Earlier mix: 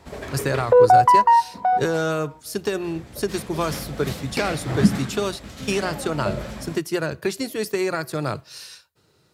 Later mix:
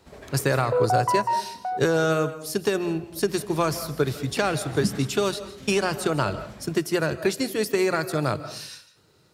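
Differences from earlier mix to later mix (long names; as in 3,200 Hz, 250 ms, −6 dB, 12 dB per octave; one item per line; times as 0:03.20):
background −10.5 dB
reverb: on, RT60 0.50 s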